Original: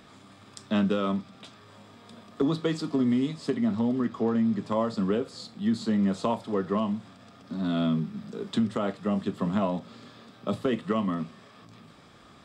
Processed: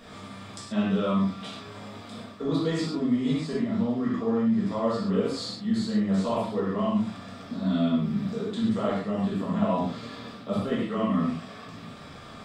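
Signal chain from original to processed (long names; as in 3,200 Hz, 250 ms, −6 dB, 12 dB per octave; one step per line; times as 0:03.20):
reversed playback
downward compressor 5 to 1, threshold −33 dBFS, peak gain reduction 12 dB
reversed playback
convolution reverb, pre-delay 4 ms, DRR −8.5 dB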